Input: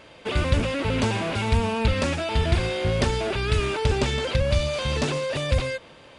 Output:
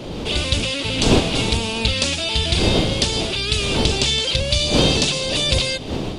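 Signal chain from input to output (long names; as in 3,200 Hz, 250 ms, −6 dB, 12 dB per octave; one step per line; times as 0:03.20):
wind on the microphone 410 Hz −23 dBFS
high shelf with overshoot 2,400 Hz +12.5 dB, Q 1.5
automatic gain control
level −2 dB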